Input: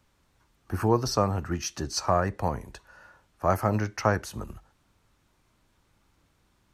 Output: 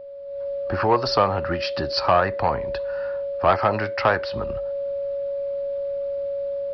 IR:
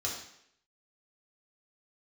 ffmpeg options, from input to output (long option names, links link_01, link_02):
-filter_complex "[0:a]acrossover=split=470[link_01][link_02];[link_01]acompressor=threshold=-39dB:ratio=4[link_03];[link_03][link_02]amix=inputs=2:normalize=0,aeval=exprs='val(0)+0.0158*sin(2*PI*560*n/s)':channel_layout=same,dynaudnorm=framelen=240:gausssize=3:maxgain=12dB,asoftclip=type=tanh:threshold=-8.5dB,aresample=11025,aresample=44100"